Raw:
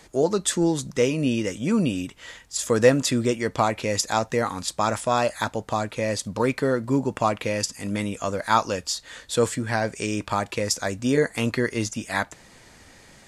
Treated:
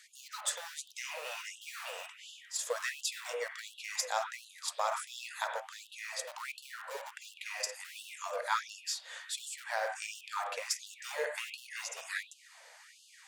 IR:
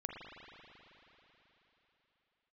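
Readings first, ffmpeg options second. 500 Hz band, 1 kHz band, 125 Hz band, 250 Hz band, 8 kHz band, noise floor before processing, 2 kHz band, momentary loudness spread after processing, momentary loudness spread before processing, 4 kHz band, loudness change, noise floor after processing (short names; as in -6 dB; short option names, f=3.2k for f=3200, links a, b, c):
-18.5 dB, -12.5 dB, under -40 dB, under -40 dB, -9.0 dB, -52 dBFS, -9.0 dB, 10 LU, 6 LU, -8.5 dB, -14.0 dB, -59 dBFS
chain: -filter_complex "[0:a]highpass=f=150:w=0.5412,highpass=f=150:w=1.3066,asplit=2[a][b];[b]acompressor=threshold=-33dB:ratio=16,volume=0dB[c];[a][c]amix=inputs=2:normalize=0,aeval=exprs='0.708*(cos(1*acos(clip(val(0)/0.708,-1,1)))-cos(1*PI/2))+0.0562*(cos(4*acos(clip(val(0)/0.708,-1,1)))-cos(4*PI/2))':c=same,acrossover=split=250|2300[d][e][f];[d]acrusher=bits=4:mix=0:aa=0.000001[g];[g][e][f]amix=inputs=3:normalize=0[h];[1:a]atrim=start_sample=2205,atrim=end_sample=6174,asetrate=39690,aresample=44100[i];[h][i]afir=irnorm=-1:irlink=0,afftfilt=real='re*gte(b*sr/1024,430*pow(2700/430,0.5+0.5*sin(2*PI*1.4*pts/sr)))':imag='im*gte(b*sr/1024,430*pow(2700/430,0.5+0.5*sin(2*PI*1.4*pts/sr)))':win_size=1024:overlap=0.75,volume=-8dB"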